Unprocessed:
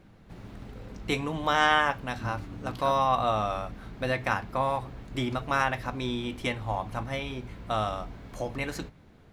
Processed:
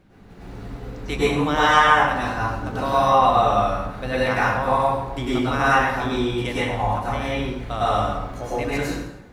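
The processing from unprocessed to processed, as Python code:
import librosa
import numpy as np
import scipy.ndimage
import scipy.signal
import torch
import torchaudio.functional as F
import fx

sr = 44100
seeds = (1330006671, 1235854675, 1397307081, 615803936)

y = fx.rev_plate(x, sr, seeds[0], rt60_s=0.94, hf_ratio=0.7, predelay_ms=90, drr_db=-9.0)
y = y * 10.0 ** (-1.0 / 20.0)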